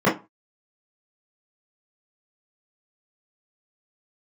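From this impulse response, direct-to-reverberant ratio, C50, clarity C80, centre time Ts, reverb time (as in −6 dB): −9.0 dB, 10.5 dB, 20.0 dB, 28 ms, 0.25 s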